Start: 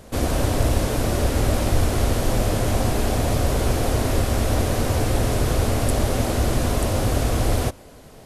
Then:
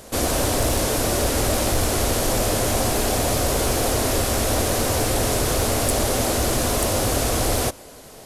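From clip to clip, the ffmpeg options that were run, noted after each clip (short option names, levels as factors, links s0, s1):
-af "bass=f=250:g=-7,treble=f=4000:g=6,aeval=exprs='0.422*sin(PI/2*1.78*val(0)/0.422)':c=same,volume=0.531"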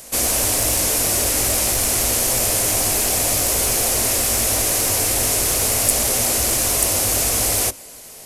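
-filter_complex "[0:a]acrossover=split=510[s0][s1];[s0]flanger=delay=17:depth=3.2:speed=0.49[s2];[s1]aexciter=amount=2.2:drive=3.8:freq=2000[s3];[s2][s3]amix=inputs=2:normalize=0,volume=0.794"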